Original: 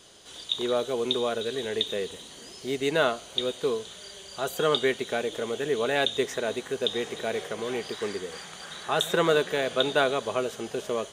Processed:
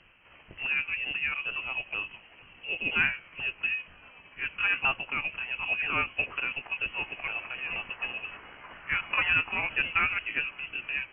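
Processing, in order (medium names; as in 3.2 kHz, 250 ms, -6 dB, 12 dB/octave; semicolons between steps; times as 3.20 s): sawtooth pitch modulation +5.5 st, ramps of 485 ms; frequency inversion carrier 3.1 kHz; distance through air 160 m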